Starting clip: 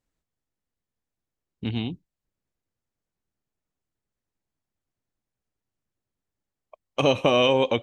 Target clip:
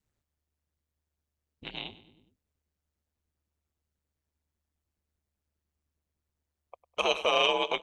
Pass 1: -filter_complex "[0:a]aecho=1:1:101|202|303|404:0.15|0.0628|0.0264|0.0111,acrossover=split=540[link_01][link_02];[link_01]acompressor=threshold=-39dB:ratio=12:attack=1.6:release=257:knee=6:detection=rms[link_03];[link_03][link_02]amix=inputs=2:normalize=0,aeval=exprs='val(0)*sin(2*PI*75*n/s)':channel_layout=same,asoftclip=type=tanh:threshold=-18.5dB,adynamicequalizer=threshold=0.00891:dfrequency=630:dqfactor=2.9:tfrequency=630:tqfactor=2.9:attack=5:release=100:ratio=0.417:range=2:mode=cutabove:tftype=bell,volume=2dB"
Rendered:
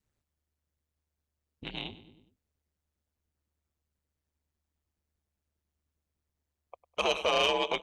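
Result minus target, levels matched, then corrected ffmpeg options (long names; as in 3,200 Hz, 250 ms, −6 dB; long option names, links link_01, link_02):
soft clipping: distortion +15 dB; downward compressor: peak gain reduction −5.5 dB
-filter_complex "[0:a]aecho=1:1:101|202|303|404:0.15|0.0628|0.0264|0.0111,acrossover=split=540[link_01][link_02];[link_01]acompressor=threshold=-45dB:ratio=12:attack=1.6:release=257:knee=6:detection=rms[link_03];[link_03][link_02]amix=inputs=2:normalize=0,aeval=exprs='val(0)*sin(2*PI*75*n/s)':channel_layout=same,asoftclip=type=tanh:threshold=-8.5dB,adynamicequalizer=threshold=0.00891:dfrequency=630:dqfactor=2.9:tfrequency=630:tqfactor=2.9:attack=5:release=100:ratio=0.417:range=2:mode=cutabove:tftype=bell,volume=2dB"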